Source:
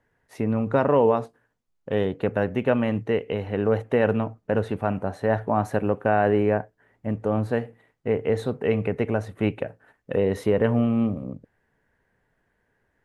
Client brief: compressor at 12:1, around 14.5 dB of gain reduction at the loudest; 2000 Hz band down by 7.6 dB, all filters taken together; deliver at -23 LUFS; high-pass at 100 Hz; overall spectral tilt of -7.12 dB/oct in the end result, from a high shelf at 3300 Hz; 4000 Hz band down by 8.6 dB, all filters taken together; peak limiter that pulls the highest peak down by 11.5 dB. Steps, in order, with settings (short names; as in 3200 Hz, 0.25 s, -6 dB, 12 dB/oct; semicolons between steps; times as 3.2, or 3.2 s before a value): HPF 100 Hz; bell 2000 Hz -8.5 dB; high shelf 3300 Hz -3.5 dB; bell 4000 Hz -5.5 dB; compressor 12:1, threshold -31 dBFS; gain +17 dB; limiter -11 dBFS